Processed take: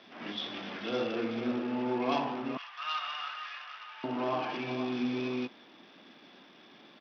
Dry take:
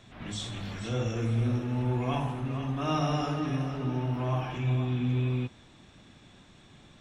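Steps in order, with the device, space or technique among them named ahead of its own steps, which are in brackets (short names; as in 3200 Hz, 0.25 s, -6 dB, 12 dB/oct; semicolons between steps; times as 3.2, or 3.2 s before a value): 2.57–4.04 inverse Chebyshev high-pass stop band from 210 Hz, stop band 80 dB; Bluetooth headset (HPF 240 Hz 24 dB/oct; downsampling 8000 Hz; gain +2.5 dB; SBC 64 kbps 44100 Hz)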